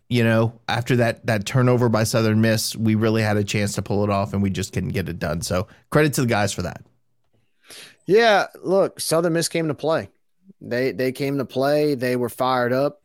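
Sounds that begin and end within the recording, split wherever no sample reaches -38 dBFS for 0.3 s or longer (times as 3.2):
7.69–10.06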